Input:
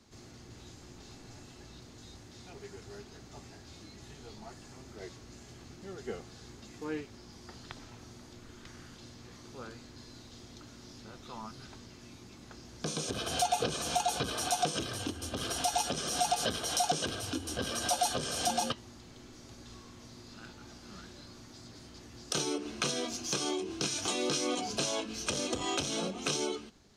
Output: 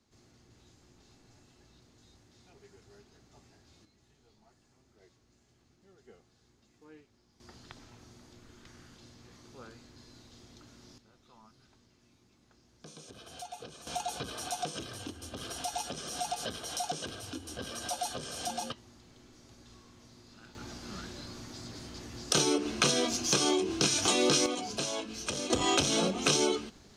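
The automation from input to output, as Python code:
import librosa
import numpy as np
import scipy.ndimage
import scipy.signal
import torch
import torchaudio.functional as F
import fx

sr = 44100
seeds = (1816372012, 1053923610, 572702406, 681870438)

y = fx.gain(x, sr, db=fx.steps((0.0, -10.5), (3.85, -17.5), (7.4, -4.5), (10.98, -15.0), (13.87, -5.5), (20.55, 6.0), (24.46, -1.5), (25.5, 6.0)))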